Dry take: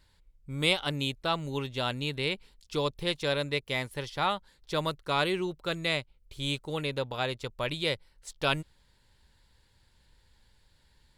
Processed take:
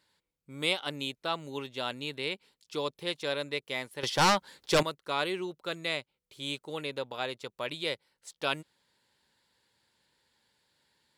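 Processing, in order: high-pass 220 Hz 12 dB/octave; 4.03–4.83 s: sine folder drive 10 dB, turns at -15 dBFS; trim -3 dB

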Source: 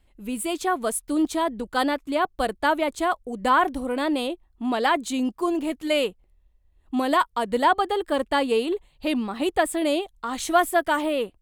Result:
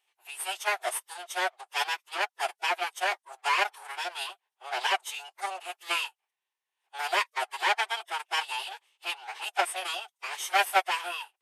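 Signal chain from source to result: comb filter that takes the minimum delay 0.35 ms; brick-wall FIR high-pass 630 Hz; formant-preserving pitch shift -10 st

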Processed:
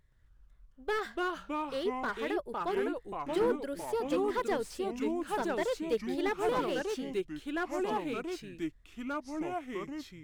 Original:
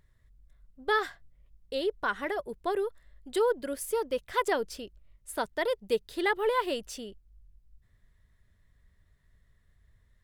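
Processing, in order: median filter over 3 samples; ever faster or slower copies 123 ms, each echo -3 st, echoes 3; slew-rate limiter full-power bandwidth 60 Hz; trim -3.5 dB

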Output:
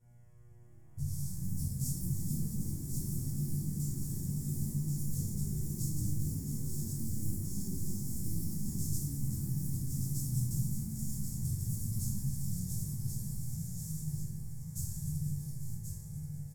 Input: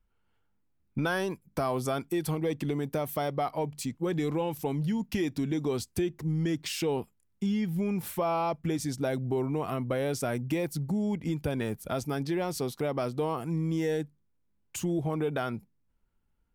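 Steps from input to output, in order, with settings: spectral levelling over time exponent 0.2; gate with hold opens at -16 dBFS; inverse Chebyshev band-stop 300–3000 Hz, stop band 50 dB; treble shelf 9.9 kHz -4.5 dB; level held to a coarse grid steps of 11 dB; mains buzz 120 Hz, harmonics 28, -67 dBFS -7 dB/octave; chorus 0.37 Hz, delay 18 ms, depth 3.5 ms; ever faster or slower copies 639 ms, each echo +5 st, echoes 3, each echo -6 dB; feedback delay 1081 ms, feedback 50%, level -6 dB; simulated room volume 290 m³, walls mixed, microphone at 4.5 m; tape noise reduction on one side only decoder only; trim -7.5 dB

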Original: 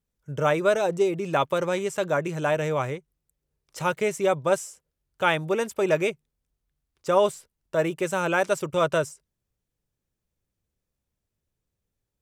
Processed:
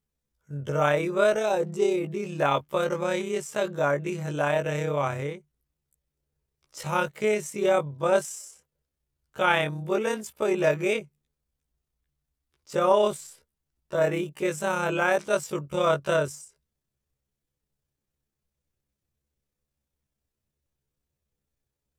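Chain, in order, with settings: granular stretch 1.8×, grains 63 ms

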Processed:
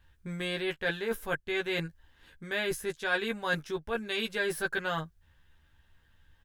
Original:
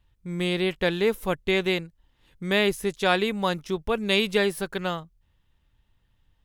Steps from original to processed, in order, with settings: peaking EQ 170 Hz -3.5 dB 2.2 oct; doubling 13 ms -3 dB; reverse; compression 6:1, threshold -33 dBFS, peak gain reduction 15.5 dB; reverse; peaking EQ 1.6 kHz +12.5 dB 0.24 oct; trim +2.5 dB

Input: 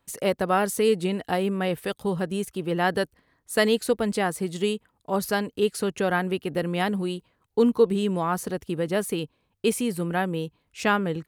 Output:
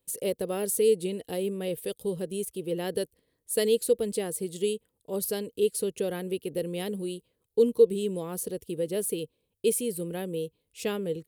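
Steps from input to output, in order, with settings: FFT filter 280 Hz 0 dB, 480 Hz +9 dB, 710 Hz -7 dB, 1.4 kHz -12 dB, 3.2 kHz +3 dB, 6.2 kHz +3 dB, 9.6 kHz +12 dB; trim -8 dB

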